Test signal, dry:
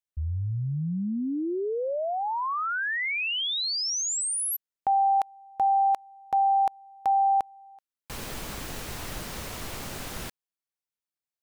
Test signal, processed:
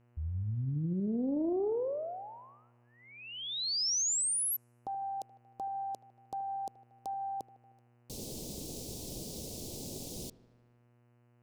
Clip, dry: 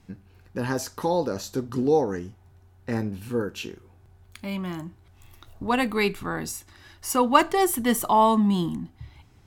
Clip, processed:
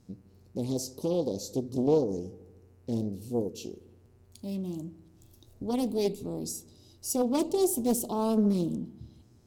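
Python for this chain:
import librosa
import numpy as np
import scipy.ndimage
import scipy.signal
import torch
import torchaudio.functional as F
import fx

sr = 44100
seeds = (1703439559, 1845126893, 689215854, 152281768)

y = scipy.signal.sosfilt(scipy.signal.cheby1(2, 1.0, [440.0, 5100.0], 'bandstop', fs=sr, output='sos'), x)
y = fx.low_shelf(y, sr, hz=65.0, db=-11.0)
y = fx.echo_wet_lowpass(y, sr, ms=77, feedback_pct=65, hz=2300.0, wet_db=-18.0)
y = fx.dmg_buzz(y, sr, base_hz=120.0, harmonics=25, level_db=-65.0, tilt_db=-7, odd_only=False)
y = fx.doppler_dist(y, sr, depth_ms=0.54)
y = F.gain(torch.from_numpy(y), -1.5).numpy()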